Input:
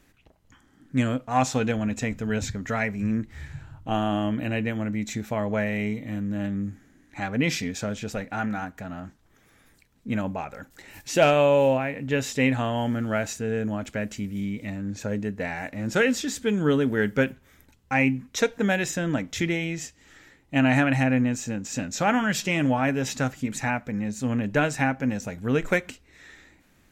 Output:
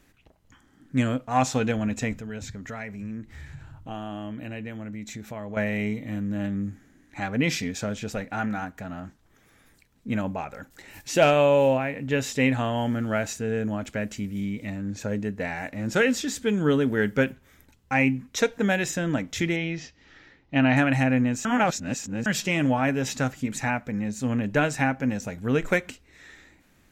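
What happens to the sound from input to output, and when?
2.15–5.57 s: compression 2:1, threshold -39 dBFS
19.56–20.77 s: steep low-pass 5.5 kHz
21.45–22.26 s: reverse

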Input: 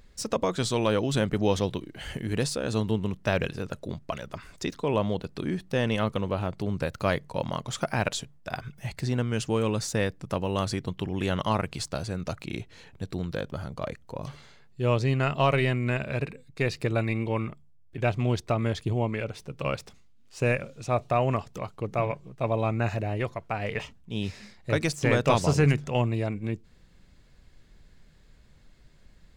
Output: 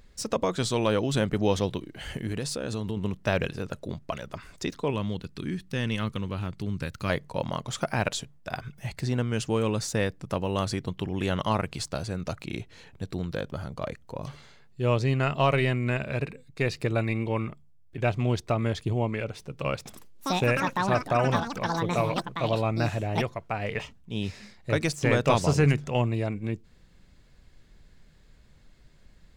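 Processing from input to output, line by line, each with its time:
2.27–2.97 s: compression 4:1, threshold -27 dBFS
4.90–7.10 s: peaking EQ 640 Hz -11.5 dB 1.4 oct
19.75–24.82 s: ever faster or slower copies 106 ms, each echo +7 st, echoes 2

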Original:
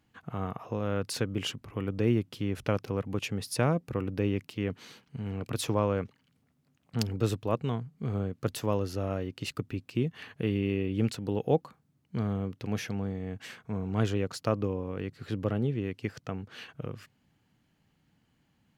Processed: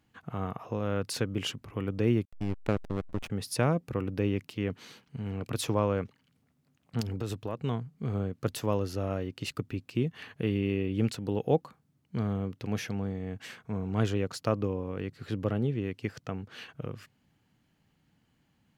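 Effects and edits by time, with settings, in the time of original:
2.25–3.30 s: hysteresis with a dead band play -25 dBFS
7.00–7.60 s: compression 4:1, threshold -29 dBFS

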